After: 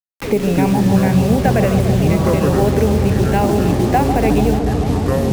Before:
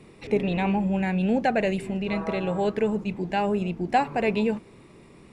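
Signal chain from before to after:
parametric band 4,300 Hz −9 dB 1.7 octaves
in parallel at −0.5 dB: downward compressor 6 to 1, threshold −30 dBFS, peak gain reduction 12.5 dB
on the sum: bit reduction 6 bits
delay with pitch and tempo change per echo 89 ms, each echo −7 semitones, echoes 3
on a send: bucket-brigade delay 145 ms, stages 1,024, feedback 83%, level −8.5 dB
on the sum: multiband upward and downward compressor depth 40%
level +4 dB

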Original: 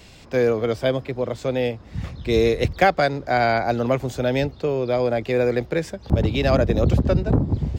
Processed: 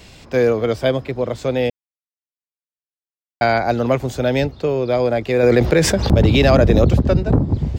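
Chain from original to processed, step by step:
0:01.70–0:03.41: silence
0:05.43–0:06.85: envelope flattener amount 70%
level +3.5 dB

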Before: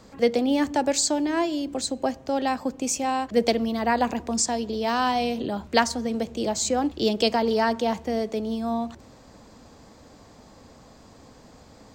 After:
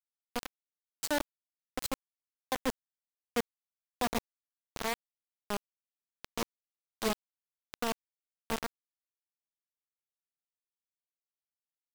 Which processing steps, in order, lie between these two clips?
fade in at the beginning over 0.99 s
high-shelf EQ 3,300 Hz −3.5 dB
reversed playback
downward compressor 4 to 1, threshold −41 dBFS, peak gain reduction 21.5 dB
reversed playback
gate pattern "...xx..." 161 BPM
on a send: single-tap delay 93 ms −21.5 dB
on the sum: bit reduction 6 bits
level +7.5 dB

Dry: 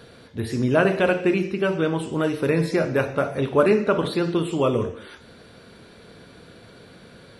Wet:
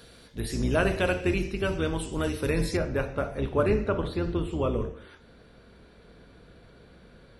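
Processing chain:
sub-octave generator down 2 octaves, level 0 dB
high-shelf EQ 3,500 Hz +11.5 dB, from 0:02.77 −2 dB, from 0:03.89 −7 dB
level −7 dB

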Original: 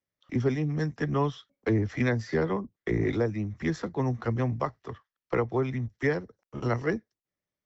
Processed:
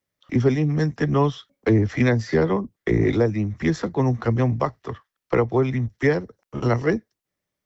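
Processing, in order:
dynamic equaliser 1,500 Hz, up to −3 dB, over −40 dBFS, Q 1.2
level +7.5 dB

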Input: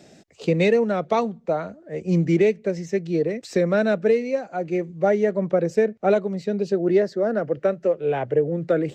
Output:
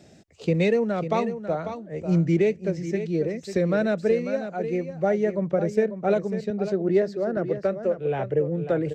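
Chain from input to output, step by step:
parametric band 72 Hz +11 dB 1.7 octaves
on a send: single-tap delay 545 ms −10 dB
0:06.50–0:07.37: on the sum: multiband upward and downward expander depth 40%
level −4 dB

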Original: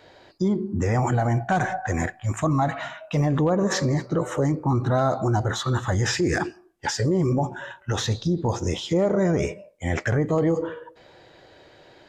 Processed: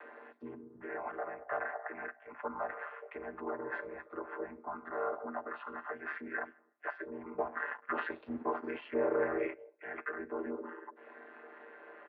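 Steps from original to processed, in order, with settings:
channel vocoder with a chord as carrier major triad, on A2
first difference
comb filter 5.4 ms, depth 44%
upward compression, threshold −51 dBFS
0:07.38–0:09.54: leveller curve on the samples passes 2
single-sideband voice off tune −92 Hz 400–2,100 Hz
level +14.5 dB

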